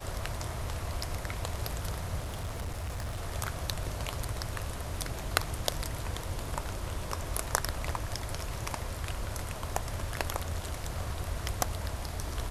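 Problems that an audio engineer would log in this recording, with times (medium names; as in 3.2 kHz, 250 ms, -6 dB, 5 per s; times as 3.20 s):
2.19–3.21 s: clipped -32 dBFS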